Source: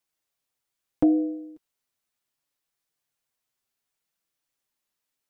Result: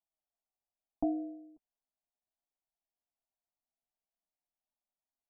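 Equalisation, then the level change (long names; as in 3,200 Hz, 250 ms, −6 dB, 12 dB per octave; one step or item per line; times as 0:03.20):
transistor ladder low-pass 720 Hz, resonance 50%
parametric band 340 Hz −13 dB 0.99 octaves
phaser with its sweep stopped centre 510 Hz, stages 6
+6.5 dB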